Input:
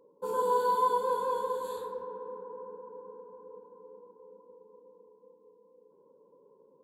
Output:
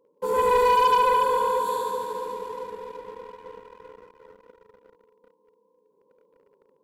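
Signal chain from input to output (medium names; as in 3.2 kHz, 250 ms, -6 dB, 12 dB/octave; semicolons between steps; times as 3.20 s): thinning echo 73 ms, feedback 82%, high-pass 340 Hz, level -4.5 dB; waveshaping leveller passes 2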